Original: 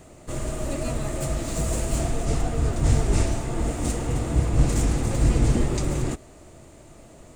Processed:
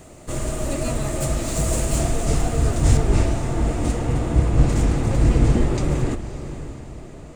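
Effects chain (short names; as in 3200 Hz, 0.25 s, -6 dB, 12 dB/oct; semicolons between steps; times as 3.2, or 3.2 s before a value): high shelf 5300 Hz +2.5 dB, from 2.97 s -10.5 dB; diffused feedback echo 0.572 s, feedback 45%, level -12 dB; gain +3.5 dB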